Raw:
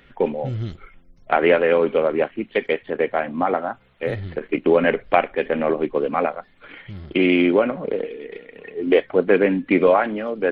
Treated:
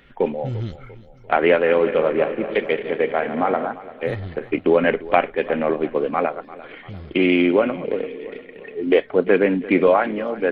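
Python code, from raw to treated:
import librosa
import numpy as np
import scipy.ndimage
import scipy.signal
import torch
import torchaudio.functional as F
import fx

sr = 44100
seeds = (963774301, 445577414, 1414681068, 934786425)

y = fx.reverse_delay_fb(x, sr, ms=111, feedback_pct=78, wet_db=-11, at=(1.58, 3.67))
y = fx.echo_feedback(y, sr, ms=345, feedback_pct=47, wet_db=-18)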